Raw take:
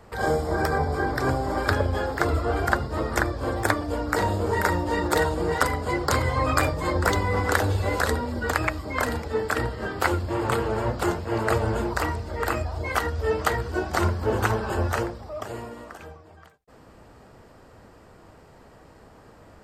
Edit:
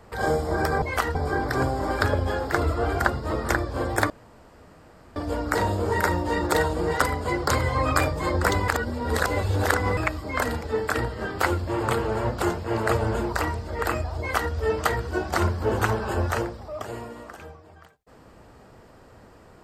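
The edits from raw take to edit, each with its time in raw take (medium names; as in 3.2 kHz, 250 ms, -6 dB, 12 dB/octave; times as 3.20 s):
3.77 s: insert room tone 1.06 s
7.29–8.58 s: reverse
12.80–13.13 s: copy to 0.82 s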